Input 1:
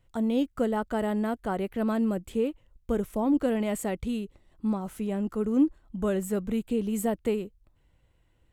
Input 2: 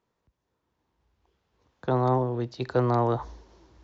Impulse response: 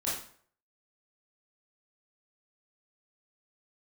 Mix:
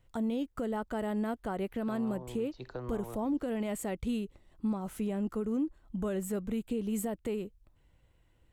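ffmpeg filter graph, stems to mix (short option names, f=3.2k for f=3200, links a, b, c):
-filter_complex "[0:a]volume=-0.5dB[a];[1:a]acompressor=threshold=-24dB:ratio=6,volume=-12dB[b];[a][b]amix=inputs=2:normalize=0,alimiter=level_in=1dB:limit=-24dB:level=0:latency=1:release=225,volume=-1dB"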